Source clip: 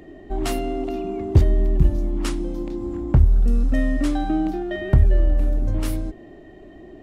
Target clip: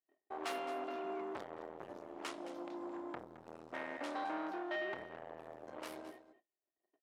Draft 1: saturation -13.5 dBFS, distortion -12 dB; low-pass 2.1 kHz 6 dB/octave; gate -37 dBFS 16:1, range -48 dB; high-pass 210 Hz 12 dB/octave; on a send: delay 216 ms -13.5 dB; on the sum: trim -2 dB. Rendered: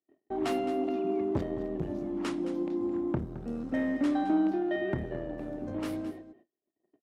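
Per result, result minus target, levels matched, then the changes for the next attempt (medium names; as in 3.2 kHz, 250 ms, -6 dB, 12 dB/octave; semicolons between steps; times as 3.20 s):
250 Hz band +6.0 dB; saturation: distortion -8 dB
change: high-pass 690 Hz 12 dB/octave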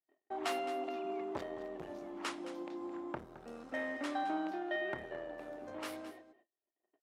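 saturation: distortion -8 dB
change: saturation -25 dBFS, distortion -5 dB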